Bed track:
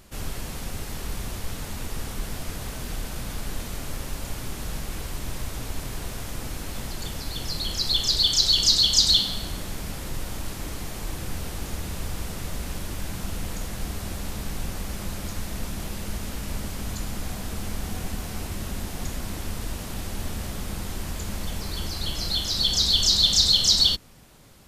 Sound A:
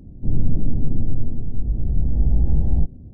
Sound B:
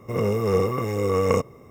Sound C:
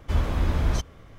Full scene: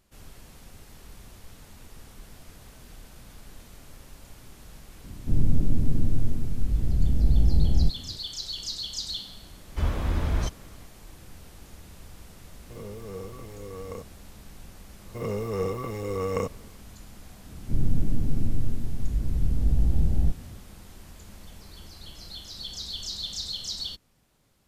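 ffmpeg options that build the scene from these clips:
ffmpeg -i bed.wav -i cue0.wav -i cue1.wav -i cue2.wav -filter_complex "[1:a]asplit=2[link_01][link_02];[2:a]asplit=2[link_03][link_04];[0:a]volume=-15dB[link_05];[link_03]equalizer=frequency=2100:width_type=o:width=2.7:gain=-3.5[link_06];[link_01]atrim=end=3.13,asetpts=PTS-STARTPTS,volume=-2.5dB,afade=type=in:duration=0.004:curve=hsin,afade=type=out:start_time=3.126:duration=0.004:curve=hsin,adelay=5040[link_07];[3:a]atrim=end=1.18,asetpts=PTS-STARTPTS,volume=-2.5dB,afade=type=in:duration=0.004:curve=hsin,afade=type=out:start_time=1.176:duration=0.004:curve=hsin,adelay=9680[link_08];[link_06]atrim=end=1.7,asetpts=PTS-STARTPTS,volume=-17dB,afade=type=in:duration=0.004:curve=hsin,afade=type=out:start_time=1.696:duration=0.004:curve=hsin,adelay=12610[link_09];[link_04]atrim=end=1.7,asetpts=PTS-STARTPTS,volume=-7.5dB,afade=type=in:duration=0.004:curve=hsin,afade=type=out:start_time=1.696:duration=0.004:curve=hsin,adelay=15060[link_10];[link_02]atrim=end=3.13,asetpts=PTS-STARTPTS,volume=-4.5dB,afade=type=in:duration=0.004:curve=hsin,afade=type=out:start_time=3.126:duration=0.004:curve=hsin,adelay=17460[link_11];[link_05][link_07][link_08][link_09][link_10][link_11]amix=inputs=6:normalize=0" out.wav

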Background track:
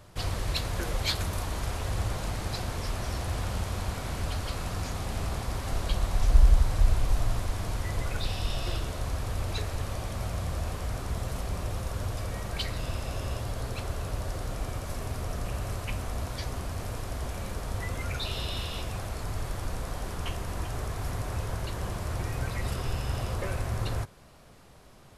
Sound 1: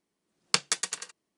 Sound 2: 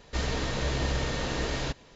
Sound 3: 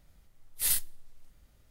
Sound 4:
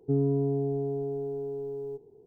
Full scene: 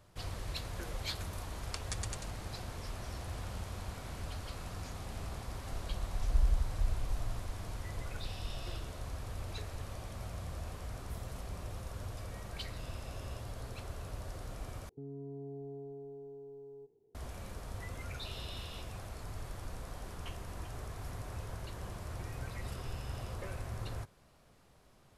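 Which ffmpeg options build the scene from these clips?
ffmpeg -i bed.wav -i cue0.wav -i cue1.wav -i cue2.wav -i cue3.wav -filter_complex "[0:a]volume=-10dB[link_01];[1:a]alimiter=limit=-12.5dB:level=0:latency=1:release=243[link_02];[3:a]aeval=exprs='val(0)*pow(10,-31*(0.5-0.5*cos(2*PI*1.9*n/s))/20)':channel_layout=same[link_03];[4:a]alimiter=level_in=0.5dB:limit=-24dB:level=0:latency=1:release=126,volume=-0.5dB[link_04];[link_01]asplit=2[link_05][link_06];[link_05]atrim=end=14.894[link_07];[link_04]atrim=end=2.26,asetpts=PTS-STARTPTS,volume=-14.5dB[link_08];[link_06]atrim=start=17.146[link_09];[link_02]atrim=end=1.37,asetpts=PTS-STARTPTS,volume=-10dB,afade=type=in:duration=0.004:curve=hsin,afade=type=out:start_time=1.366:duration=0.004:curve=hsin,adelay=1200[link_10];[link_03]atrim=end=1.7,asetpts=PTS-STARTPTS,volume=-17.5dB,afade=type=in:duration=0.004:curve=hsin,afade=type=out:start_time=1.696:duration=0.004:curve=hsin,adelay=463050S[link_11];[link_07][link_08]acrossfade=duration=0.004:curve1=hsin:curve2=hsin[link_12];[link_12][link_09]acrossfade=duration=0.004:curve1=hsin:curve2=hsin[link_13];[link_13][link_10][link_11]amix=inputs=3:normalize=0" out.wav

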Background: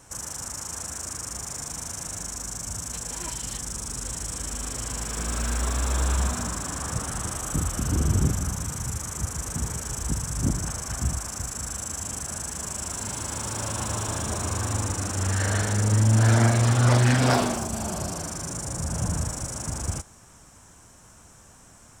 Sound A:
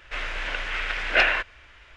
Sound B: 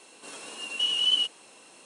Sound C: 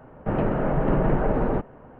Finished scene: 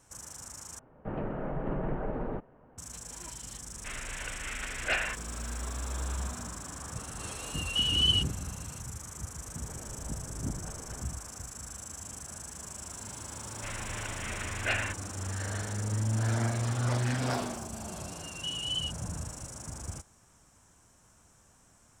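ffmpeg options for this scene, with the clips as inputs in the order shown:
ffmpeg -i bed.wav -i cue0.wav -i cue1.wav -i cue2.wav -filter_complex "[3:a]asplit=2[link_01][link_02];[1:a]asplit=2[link_03][link_04];[2:a]asplit=2[link_05][link_06];[0:a]volume=-10.5dB[link_07];[link_02]acompressor=threshold=-31dB:ratio=6:attack=3.2:release=140:knee=1:detection=peak[link_08];[link_07]asplit=2[link_09][link_10];[link_09]atrim=end=0.794[link_11];[link_01]atrim=end=1.99,asetpts=PTS-STARTPTS,volume=-11.5dB[link_12];[link_10]atrim=start=2.776[link_13];[link_03]atrim=end=1.96,asetpts=PTS-STARTPTS,volume=-10.5dB,afade=type=in:duration=0.004:curve=hsin,afade=type=out:start_time=1.956:duration=0.004:curve=hsin,adelay=164493S[link_14];[link_05]atrim=end=1.85,asetpts=PTS-STARTPTS,volume=-2dB,afade=type=in:duration=0.004:curve=hsin,afade=type=out:start_time=1.846:duration=0.004:curve=hsin,adelay=6960[link_15];[link_08]atrim=end=1.99,asetpts=PTS-STARTPTS,volume=-14dB,afade=type=in:duration=0.004:curve=hsin,afade=type=out:start_time=1.986:duration=0.004:curve=hsin,adelay=9430[link_16];[link_04]atrim=end=1.96,asetpts=PTS-STARTPTS,volume=-11.5dB,afade=type=in:duration=0.004:curve=hsin,afade=type=out:start_time=1.956:duration=0.004:curve=hsin,adelay=13510[link_17];[link_06]atrim=end=1.85,asetpts=PTS-STARTPTS,volume=-10dB,afade=type=in:duration=0.004:curve=hsin,afade=type=out:start_time=1.846:duration=0.004:curve=hsin,adelay=777924S[link_18];[link_11][link_12]acrossfade=duration=0.004:curve1=hsin:curve2=hsin[link_19];[link_19][link_13]acrossfade=duration=0.004:curve1=hsin:curve2=hsin[link_20];[link_20][link_14][link_15][link_16][link_17][link_18]amix=inputs=6:normalize=0" out.wav

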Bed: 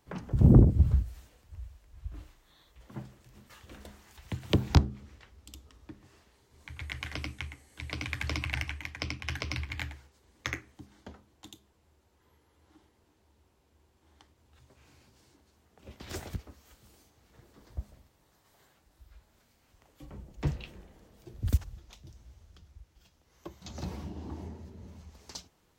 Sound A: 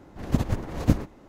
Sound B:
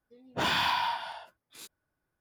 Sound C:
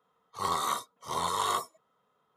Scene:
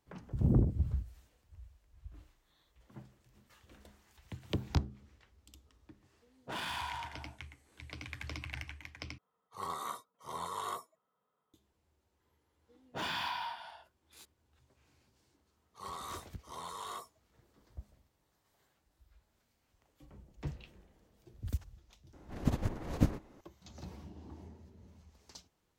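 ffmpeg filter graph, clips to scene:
ffmpeg -i bed.wav -i cue0.wav -i cue1.wav -i cue2.wav -filter_complex "[2:a]asplit=2[link_01][link_02];[3:a]asplit=2[link_03][link_04];[0:a]volume=-9.5dB[link_05];[link_01]adynamicsmooth=sensitivity=7.5:basefreq=980[link_06];[link_03]equalizer=frequency=5000:width_type=o:width=2:gain=-5.5[link_07];[link_04]asoftclip=type=tanh:threshold=-23dB[link_08];[link_05]asplit=2[link_09][link_10];[link_09]atrim=end=9.184[link_11];[link_07]atrim=end=2.36,asetpts=PTS-STARTPTS,volume=-9dB[link_12];[link_10]atrim=start=11.536[link_13];[link_06]atrim=end=2.2,asetpts=PTS-STARTPTS,volume=-11.5dB,afade=type=in:duration=0.004:curve=hsin,afade=type=out:start_time=2.196:duration=0.004:curve=hsin,adelay=6110[link_14];[link_02]atrim=end=2.2,asetpts=PTS-STARTPTS,volume=-9.5dB,afade=type=in:duration=0.004:curve=hsin,afade=type=out:start_time=2.196:duration=0.004:curve=hsin,adelay=12580[link_15];[link_08]atrim=end=2.36,asetpts=PTS-STARTPTS,volume=-12.5dB,afade=type=in:duration=0.004:curve=hsin,afade=type=out:start_time=2.356:duration=0.004:curve=hsin,adelay=15410[link_16];[1:a]atrim=end=1.28,asetpts=PTS-STARTPTS,volume=-7.5dB,afade=type=in:duration=0.004:curve=hsin,afade=type=out:start_time=1.276:duration=0.004:curve=hsin,adelay=22130[link_17];[link_11][link_12]acrossfade=duration=0.004:curve1=hsin:curve2=hsin[link_18];[link_18][link_13]acrossfade=duration=0.004:curve1=hsin:curve2=hsin[link_19];[link_19][link_14][link_15][link_16][link_17]amix=inputs=5:normalize=0" out.wav

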